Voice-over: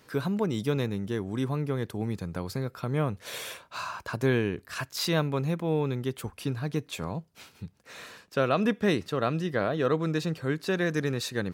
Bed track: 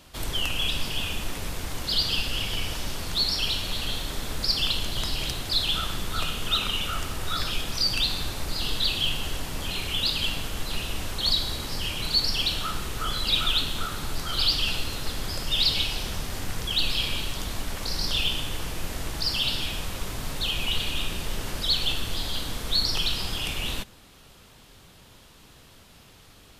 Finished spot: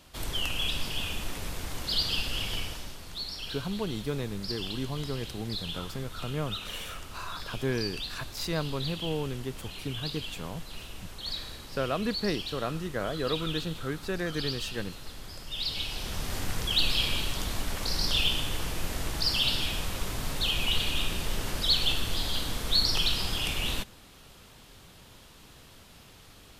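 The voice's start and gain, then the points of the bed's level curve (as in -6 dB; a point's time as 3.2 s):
3.40 s, -5.0 dB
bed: 2.56 s -3.5 dB
2.99 s -12 dB
15.49 s -12 dB
16.32 s -0.5 dB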